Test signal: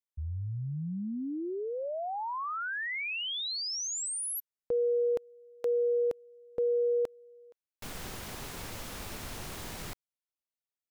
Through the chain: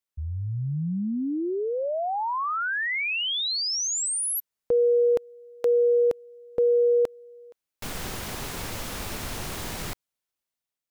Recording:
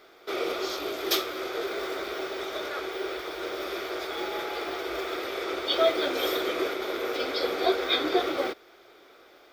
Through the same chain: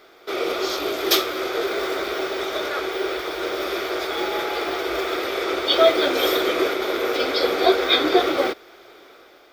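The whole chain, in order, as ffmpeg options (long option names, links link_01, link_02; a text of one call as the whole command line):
ffmpeg -i in.wav -af "dynaudnorm=framelen=150:gausssize=7:maxgain=3.5dB,volume=4dB" out.wav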